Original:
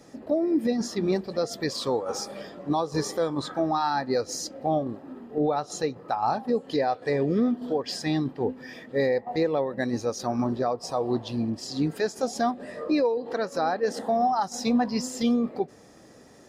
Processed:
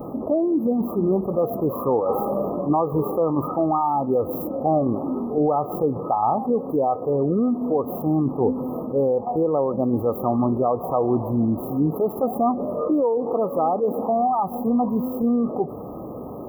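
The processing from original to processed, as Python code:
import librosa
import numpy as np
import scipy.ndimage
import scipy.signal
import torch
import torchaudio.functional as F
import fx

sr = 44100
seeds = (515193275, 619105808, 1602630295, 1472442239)

y = scipy.ndimage.median_filter(x, 3, mode='constant')
y = fx.rider(y, sr, range_db=10, speed_s=0.5)
y = fx.brickwall_bandstop(y, sr, low_hz=1300.0, high_hz=11000.0)
y = fx.env_flatten(y, sr, amount_pct=50)
y = y * 10.0 ** (2.5 / 20.0)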